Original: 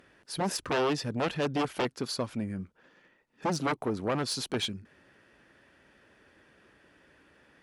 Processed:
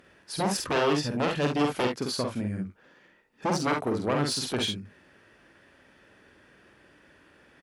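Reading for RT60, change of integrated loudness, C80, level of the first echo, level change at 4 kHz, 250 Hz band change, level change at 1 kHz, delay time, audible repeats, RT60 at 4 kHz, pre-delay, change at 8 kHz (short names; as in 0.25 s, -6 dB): none, +3.5 dB, none, -3.5 dB, +3.5 dB, +4.0 dB, +3.5 dB, 48 ms, 1, none, none, +3.5 dB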